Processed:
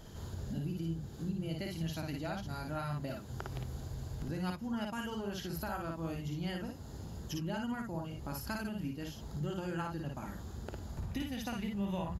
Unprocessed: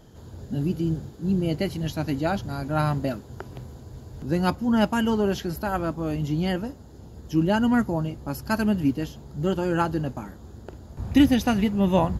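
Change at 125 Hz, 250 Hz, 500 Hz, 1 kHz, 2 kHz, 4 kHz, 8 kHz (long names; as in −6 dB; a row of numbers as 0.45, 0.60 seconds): −11.0, −15.5, −15.5, −14.0, −12.0, −10.5, −7.5 decibels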